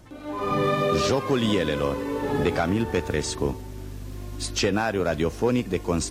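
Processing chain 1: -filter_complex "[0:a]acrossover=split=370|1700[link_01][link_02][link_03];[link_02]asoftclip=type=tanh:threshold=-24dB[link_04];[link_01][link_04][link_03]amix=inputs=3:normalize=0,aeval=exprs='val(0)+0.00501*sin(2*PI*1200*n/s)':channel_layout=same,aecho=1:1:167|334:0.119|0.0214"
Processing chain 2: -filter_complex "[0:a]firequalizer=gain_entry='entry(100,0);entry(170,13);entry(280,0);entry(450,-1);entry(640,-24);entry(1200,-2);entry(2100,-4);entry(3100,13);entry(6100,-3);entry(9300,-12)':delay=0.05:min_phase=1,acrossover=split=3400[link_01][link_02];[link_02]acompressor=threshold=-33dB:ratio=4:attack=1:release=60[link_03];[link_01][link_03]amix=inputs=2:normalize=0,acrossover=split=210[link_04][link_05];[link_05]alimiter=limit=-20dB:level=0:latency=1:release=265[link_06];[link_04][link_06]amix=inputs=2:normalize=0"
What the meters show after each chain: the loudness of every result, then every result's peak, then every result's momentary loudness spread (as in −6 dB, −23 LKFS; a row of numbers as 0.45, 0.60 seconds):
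−26.0, −24.5 LKFS; −13.0, −10.0 dBFS; 12, 12 LU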